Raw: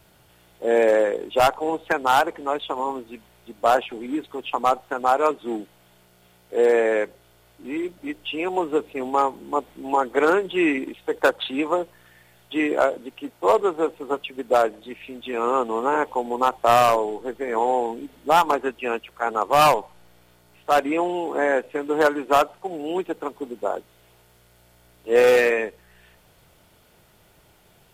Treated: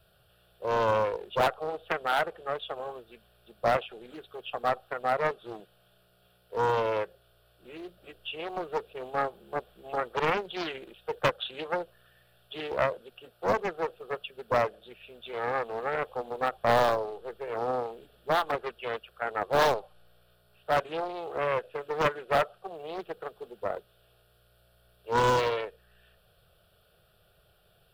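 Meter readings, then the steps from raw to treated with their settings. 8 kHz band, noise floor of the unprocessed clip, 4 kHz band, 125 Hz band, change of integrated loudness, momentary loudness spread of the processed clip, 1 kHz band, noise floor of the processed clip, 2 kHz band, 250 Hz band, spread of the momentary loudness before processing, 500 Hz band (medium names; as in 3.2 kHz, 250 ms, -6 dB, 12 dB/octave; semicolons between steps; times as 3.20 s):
under -10 dB, -57 dBFS, -5.5 dB, +1.5 dB, -8.0 dB, 16 LU, -8.0 dB, -65 dBFS, -7.0 dB, -14.0 dB, 13 LU, -8.5 dB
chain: static phaser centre 1.4 kHz, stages 8; loudspeaker Doppler distortion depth 0.63 ms; trim -5.5 dB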